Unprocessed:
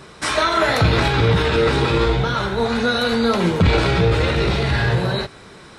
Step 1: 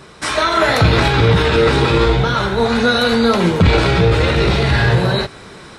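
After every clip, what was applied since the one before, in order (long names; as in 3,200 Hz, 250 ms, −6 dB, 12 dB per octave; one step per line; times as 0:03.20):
automatic gain control gain up to 5 dB
level +1 dB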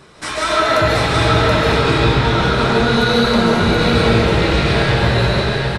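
brickwall limiter −7 dBFS, peak gain reduction 5.5 dB
single-tap delay 728 ms −3.5 dB
convolution reverb RT60 1.5 s, pre-delay 105 ms, DRR −4 dB
level −4.5 dB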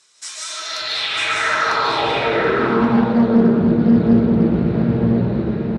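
band-pass filter sweep 6,900 Hz → 220 Hz, 0:00.56–0:02.93
single-tap delay 948 ms −4 dB
highs frequency-modulated by the lows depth 0.3 ms
level +4.5 dB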